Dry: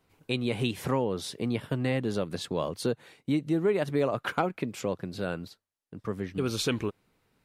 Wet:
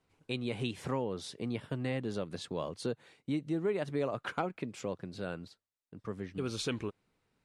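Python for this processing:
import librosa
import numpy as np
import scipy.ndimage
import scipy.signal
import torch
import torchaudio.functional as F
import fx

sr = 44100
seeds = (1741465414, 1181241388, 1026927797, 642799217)

y = scipy.signal.sosfilt(scipy.signal.butter(4, 9900.0, 'lowpass', fs=sr, output='sos'), x)
y = y * 10.0 ** (-6.5 / 20.0)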